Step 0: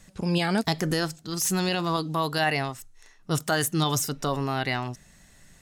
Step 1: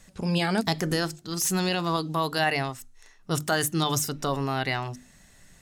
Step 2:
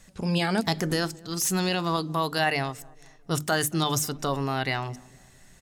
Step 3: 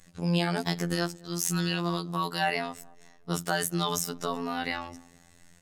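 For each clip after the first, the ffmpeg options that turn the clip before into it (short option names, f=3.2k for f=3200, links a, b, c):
-af "bandreject=f=50:t=h:w=6,bandreject=f=100:t=h:w=6,bandreject=f=150:t=h:w=6,bandreject=f=200:t=h:w=6,bandreject=f=250:t=h:w=6,bandreject=f=300:t=h:w=6,bandreject=f=350:t=h:w=6"
-filter_complex "[0:a]asplit=2[a][b];[b]adelay=224,lowpass=f=1.1k:p=1,volume=-23dB,asplit=2[c][d];[d]adelay=224,lowpass=f=1.1k:p=1,volume=0.54,asplit=2[e][f];[f]adelay=224,lowpass=f=1.1k:p=1,volume=0.54,asplit=2[g][h];[h]adelay=224,lowpass=f=1.1k:p=1,volume=0.54[i];[a][c][e][g][i]amix=inputs=5:normalize=0"
-af "afftfilt=real='hypot(re,im)*cos(PI*b)':imag='0':win_size=2048:overlap=0.75"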